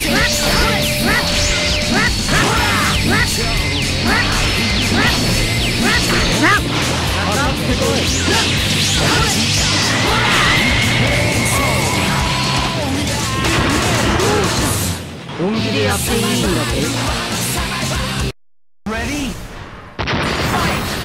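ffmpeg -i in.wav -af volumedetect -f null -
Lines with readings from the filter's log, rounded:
mean_volume: -15.9 dB
max_volume: -4.7 dB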